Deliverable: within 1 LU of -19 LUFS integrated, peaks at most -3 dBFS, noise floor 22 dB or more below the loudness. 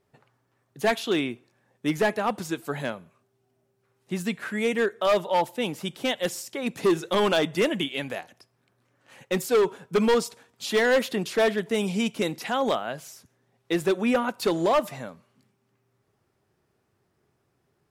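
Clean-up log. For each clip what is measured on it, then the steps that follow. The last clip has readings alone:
clipped 1.6%; flat tops at -16.5 dBFS; loudness -26.0 LUFS; peak -16.5 dBFS; loudness target -19.0 LUFS
-> clip repair -16.5 dBFS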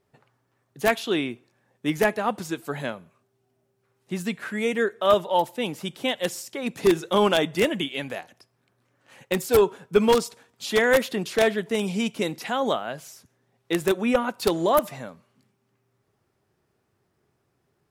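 clipped 0.0%; loudness -24.5 LUFS; peak -7.5 dBFS; loudness target -19.0 LUFS
-> gain +5.5 dB; limiter -3 dBFS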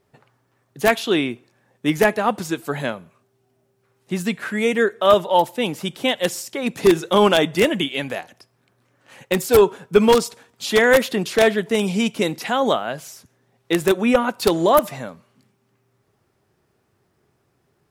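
loudness -19.5 LUFS; peak -3.0 dBFS; noise floor -67 dBFS

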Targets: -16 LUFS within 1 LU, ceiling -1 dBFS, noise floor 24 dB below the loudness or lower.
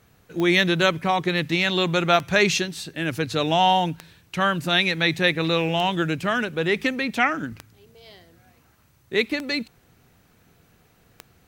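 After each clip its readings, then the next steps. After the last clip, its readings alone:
clicks 7; loudness -22.0 LUFS; peak -3.0 dBFS; loudness target -16.0 LUFS
-> de-click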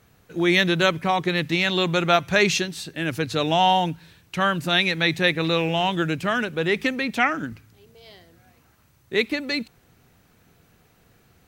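clicks 0; loudness -22.0 LUFS; peak -3.0 dBFS; loudness target -16.0 LUFS
-> gain +6 dB; limiter -1 dBFS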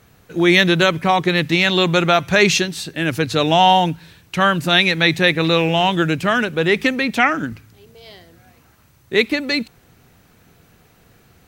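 loudness -16.5 LUFS; peak -1.0 dBFS; noise floor -53 dBFS

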